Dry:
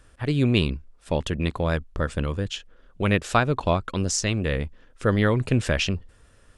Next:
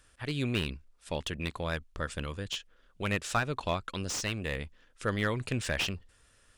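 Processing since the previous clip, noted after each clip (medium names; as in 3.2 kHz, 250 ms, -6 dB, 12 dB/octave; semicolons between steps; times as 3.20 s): tilt shelf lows -5.5 dB, about 1.3 kHz; slew-rate limiter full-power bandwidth 260 Hz; trim -6 dB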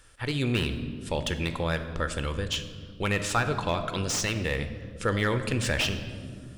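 reverberation RT60 2.0 s, pre-delay 4 ms, DRR 9 dB; in parallel at -0.5 dB: peak limiter -25 dBFS, peak gain reduction 11 dB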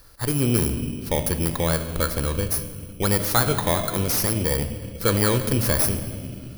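bit-reversed sample order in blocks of 16 samples; trim +6 dB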